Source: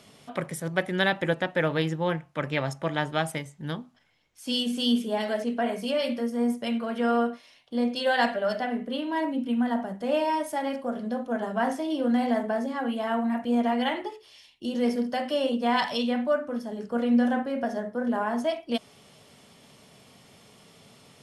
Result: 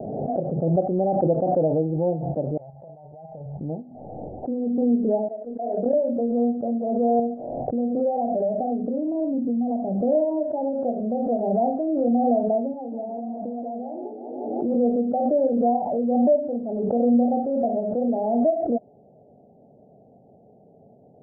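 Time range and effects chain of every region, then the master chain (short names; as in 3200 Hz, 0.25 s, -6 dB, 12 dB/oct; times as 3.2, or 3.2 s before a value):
2.57–3.61 passive tone stack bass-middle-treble 10-0-10 + negative-ratio compressor -45 dBFS
5.28–5.93 gate -29 dBFS, range -25 dB + HPF 300 Hz + compressor 2:1, threshold -44 dBFS
7.19–10.15 low shelf 350 Hz +8.5 dB + compressor 3:1, threshold -26 dBFS
12.73–14.74 HPF 120 Hz + compressor 10:1, threshold -32 dBFS + warbling echo 0.176 s, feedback 62%, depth 156 cents, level -10 dB
whole clip: steep low-pass 780 Hz 96 dB/oct; tilt +2.5 dB/oct; backwards sustainer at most 30 dB/s; gain +7.5 dB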